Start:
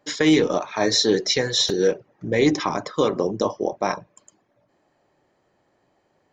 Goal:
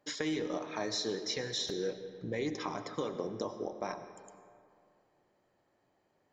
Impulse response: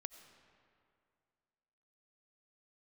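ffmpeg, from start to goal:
-filter_complex "[0:a]acompressor=threshold=-27dB:ratio=2.5[a];[1:a]atrim=start_sample=2205[b];[a][b]afir=irnorm=-1:irlink=0,volume=-4dB"

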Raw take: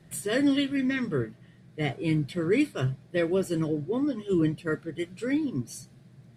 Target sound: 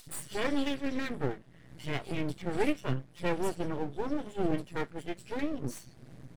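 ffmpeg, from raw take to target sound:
-filter_complex "[0:a]acrossover=split=200|3700[a][b][c];[a]adelay=60[d];[b]adelay=90[e];[d][e][c]amix=inputs=3:normalize=0,aeval=exprs='max(val(0),0)':c=same,acompressor=mode=upward:threshold=-37dB:ratio=2.5"

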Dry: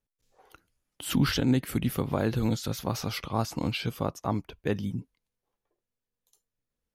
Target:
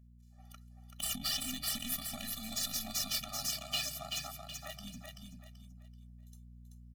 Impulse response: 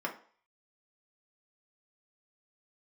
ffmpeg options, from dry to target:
-filter_complex "[0:a]highpass=f=180:w=0.5412,highpass=f=180:w=1.3066,highshelf=f=2.1k:g=10.5,acrossover=split=2600[a][b];[a]acompressor=threshold=-41dB:ratio=5[c];[c][b]amix=inputs=2:normalize=0,alimiter=limit=-22dB:level=0:latency=1:release=23,aeval=exprs='0.0794*(cos(1*acos(clip(val(0)/0.0794,-1,1)))-cos(1*PI/2))+0.0282*(cos(4*acos(clip(val(0)/0.0794,-1,1)))-cos(4*PI/2))+0.02*(cos(6*acos(clip(val(0)/0.0794,-1,1)))-cos(6*PI/2))+0.00562*(cos(7*acos(clip(val(0)/0.0794,-1,1)))-cos(7*PI/2))':c=same,asettb=1/sr,asplit=3[d][e][f];[d]atrim=end=3.094[g];[e]atrim=start=3.09:end=4.79,asetpts=PTS-STARTPTS,afade=t=in:d=0.004:c=qsin,afade=t=out:st=1.696:d=0.004:c=qsin,afreqshift=140[h];[f]atrim=start=4.786[i];[g][h]acrossfade=d=0.004:c1=hsin:c2=qsin[j];[j][i]acrossfade=d=0.004:c1=qsin:c2=hsin,aeval=exprs='val(0)+0.00141*(sin(2*PI*60*n/s)+sin(2*PI*2*60*n/s)/2+sin(2*PI*3*60*n/s)/3+sin(2*PI*4*60*n/s)/4+sin(2*PI*5*60*n/s)/5)':c=same,aecho=1:1:383|766|1149|1532:0.596|0.185|0.0572|0.0177,afftfilt=real='re*eq(mod(floor(b*sr/1024/280),2),0)':imag='im*eq(mod(floor(b*sr/1024/280),2),0)':win_size=1024:overlap=0.75"

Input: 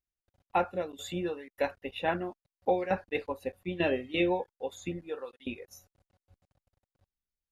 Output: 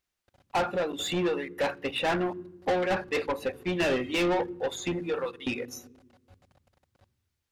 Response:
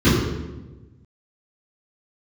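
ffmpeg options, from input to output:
-filter_complex "[0:a]lowshelf=f=220:g=10,asplit=2[a][b];[b]highpass=f=720:p=1,volume=25dB,asoftclip=type=tanh:threshold=-14dB[c];[a][c]amix=inputs=2:normalize=0,lowpass=f=5.1k:p=1,volume=-6dB,asplit=2[d][e];[1:a]atrim=start_sample=2205,adelay=31[f];[e][f]afir=irnorm=-1:irlink=0,volume=-45.5dB[g];[d][g]amix=inputs=2:normalize=0,volume=-5dB"

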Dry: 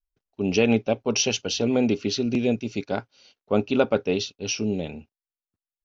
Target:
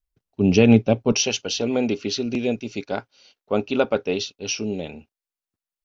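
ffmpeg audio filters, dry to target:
-af "asetnsamples=n=441:p=0,asendcmd='1.12 equalizer g -5',equalizer=f=110:w=0.48:g=9.5,volume=1.5dB"

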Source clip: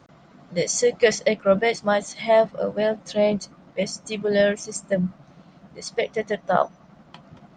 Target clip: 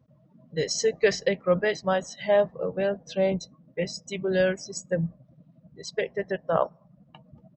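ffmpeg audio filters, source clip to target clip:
-af "afftdn=nr=21:nf=-43,equalizer=f=61:t=o:w=0.3:g=9.5,asetrate=40440,aresample=44100,atempo=1.09051,volume=-4dB"

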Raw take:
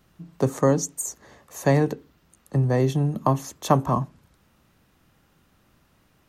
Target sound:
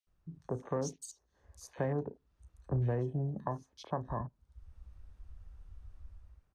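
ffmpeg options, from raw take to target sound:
-filter_complex "[0:a]asetrate=42336,aresample=44100,dynaudnorm=f=220:g=5:m=10dB,equalizer=f=125:t=o:w=1:g=-8,equalizer=f=250:t=o:w=1:g=-7,equalizer=f=8k:t=o:w=1:g=7,acompressor=threshold=-44dB:ratio=2,asplit=2[a][b];[b]adelay=34,volume=-14dB[c];[a][c]amix=inputs=2:normalize=0,afwtdn=0.00794,aemphasis=mode=reproduction:type=bsi,bandreject=f=7.4k:w=13,acrossover=split=2600[d][e];[d]adelay=70[f];[f][e]amix=inputs=2:normalize=0,volume=-3.5dB"

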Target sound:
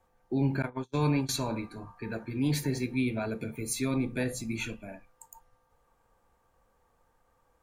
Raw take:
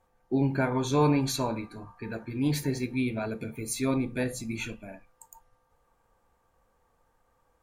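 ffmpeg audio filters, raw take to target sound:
-filter_complex "[0:a]asettb=1/sr,asplit=3[a][b][c];[a]atrim=end=0.624[d];[b]atrim=start=0.62:end=1.29,asetpts=PTS-STARTPTS,afade=t=in:d=0.004:c=qsin,afade=t=out:st=0.666:d=0.004:c=qsin,agate=range=-43dB:threshold=-25dB:ratio=16:detection=peak[e];[c]atrim=start=1.286[f];[d][e]acrossfade=d=0.004:c1=hsin:c2=qsin[g];[g][f]acrossfade=d=0.004:c1=qsin:c2=hsin,acrossover=split=220|1600|7200[h][i][j][k];[i]alimiter=level_in=1.5dB:limit=-24dB:level=0:latency=1,volume=-1.5dB[l];[h][l][j][k]amix=inputs=4:normalize=0"

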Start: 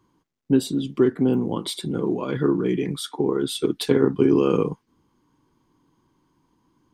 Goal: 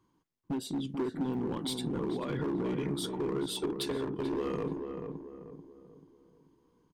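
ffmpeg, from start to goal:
-filter_complex "[0:a]acompressor=threshold=-19dB:ratio=12,volume=22dB,asoftclip=hard,volume=-22dB,asplit=2[a][b];[b]adelay=437,lowpass=f=1.2k:p=1,volume=-5dB,asplit=2[c][d];[d]adelay=437,lowpass=f=1.2k:p=1,volume=0.43,asplit=2[e][f];[f]adelay=437,lowpass=f=1.2k:p=1,volume=0.43,asplit=2[g][h];[h]adelay=437,lowpass=f=1.2k:p=1,volume=0.43,asplit=2[i][j];[j]adelay=437,lowpass=f=1.2k:p=1,volume=0.43[k];[a][c][e][g][i][k]amix=inputs=6:normalize=0,volume=-7dB"

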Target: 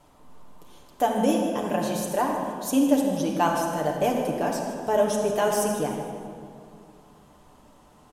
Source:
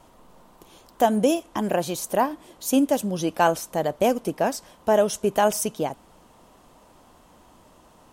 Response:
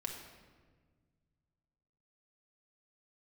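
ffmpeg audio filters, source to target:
-filter_complex "[0:a]aecho=1:1:157|314|471|628:0.211|0.093|0.0409|0.018[a];[1:a]atrim=start_sample=2205,asetrate=27783,aresample=44100[b];[a][b]afir=irnorm=-1:irlink=0,volume=-4.5dB"

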